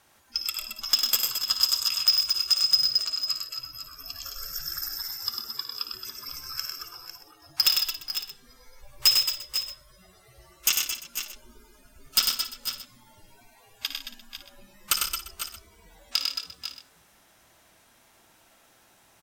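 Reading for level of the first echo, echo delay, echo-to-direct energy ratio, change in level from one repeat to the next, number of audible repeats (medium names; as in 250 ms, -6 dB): -11.0 dB, 56 ms, -0.5 dB, no regular repeats, 9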